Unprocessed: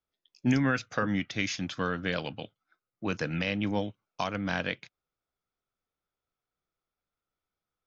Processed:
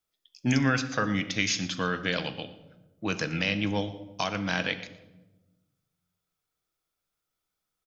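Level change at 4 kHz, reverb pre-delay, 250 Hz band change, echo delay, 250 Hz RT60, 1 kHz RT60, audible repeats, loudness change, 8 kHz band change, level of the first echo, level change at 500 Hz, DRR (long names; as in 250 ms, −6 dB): +6.0 dB, 6 ms, +1.0 dB, 116 ms, 1.5 s, 0.95 s, 1, +2.5 dB, can't be measured, −18.5 dB, +1.0 dB, 9.5 dB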